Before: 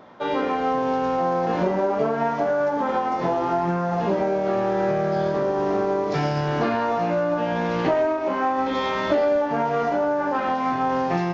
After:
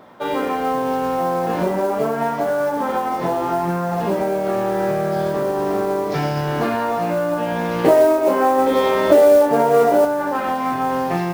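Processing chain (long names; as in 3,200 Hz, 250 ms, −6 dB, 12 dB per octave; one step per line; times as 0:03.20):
0:07.84–0:10.05: parametric band 460 Hz +10 dB 1.2 octaves
noise that follows the level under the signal 25 dB
level +2 dB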